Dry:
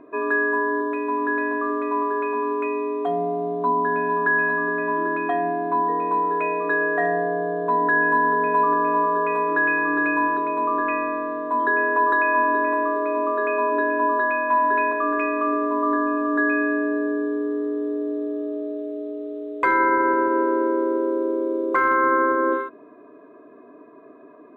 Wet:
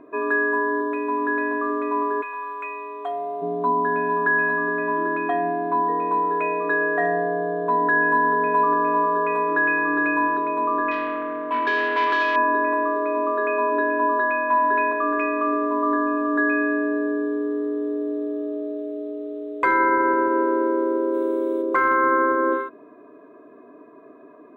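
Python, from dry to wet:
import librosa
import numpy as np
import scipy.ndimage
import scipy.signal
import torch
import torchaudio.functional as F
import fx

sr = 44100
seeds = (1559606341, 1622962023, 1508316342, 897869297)

y = fx.highpass(x, sr, hz=fx.line((2.21, 1300.0), (3.41, 550.0)), slope=12, at=(2.21, 3.41), fade=0.02)
y = fx.transformer_sat(y, sr, knee_hz=1200.0, at=(10.91, 12.36))
y = fx.high_shelf(y, sr, hz=fx.line((21.13, 2400.0), (21.61, 2100.0)), db=11.0, at=(21.13, 21.61), fade=0.02)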